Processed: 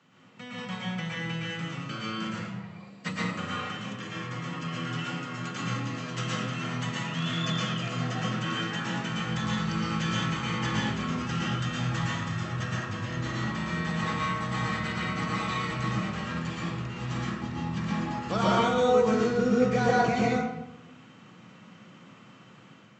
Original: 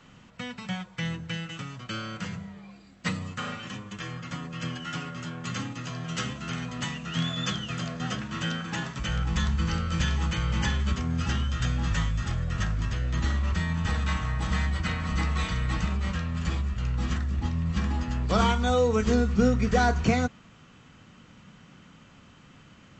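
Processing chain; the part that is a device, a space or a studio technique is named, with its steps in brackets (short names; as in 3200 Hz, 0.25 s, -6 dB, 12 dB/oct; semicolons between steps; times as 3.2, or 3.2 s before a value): HPF 110 Hz 24 dB/oct; high shelf 6400 Hz -4.5 dB; far laptop microphone (reverb RT60 0.90 s, pre-delay 0.109 s, DRR -5.5 dB; HPF 100 Hz 12 dB/oct; AGC gain up to 4.5 dB); gain -8.5 dB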